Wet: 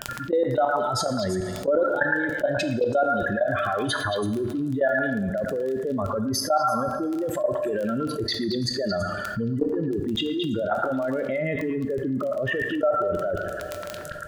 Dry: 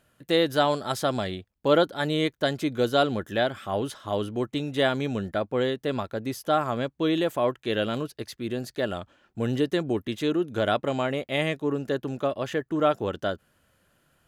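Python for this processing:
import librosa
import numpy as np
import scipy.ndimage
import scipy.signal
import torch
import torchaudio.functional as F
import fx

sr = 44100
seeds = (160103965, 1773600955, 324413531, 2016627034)

y = fx.spec_expand(x, sr, power=2.8)
y = fx.peak_eq(y, sr, hz=1800.0, db=12.5, octaves=0.96)
y = fx.level_steps(y, sr, step_db=21)
y = fx.dmg_crackle(y, sr, seeds[0], per_s=11.0, level_db=-44.0)
y = fx.echo_stepped(y, sr, ms=111, hz=1300.0, octaves=1.4, feedback_pct=70, wet_db=-1.0)
y = fx.rev_double_slope(y, sr, seeds[1], early_s=0.74, late_s=2.0, knee_db=-16, drr_db=8.5)
y = fx.env_flatten(y, sr, amount_pct=70)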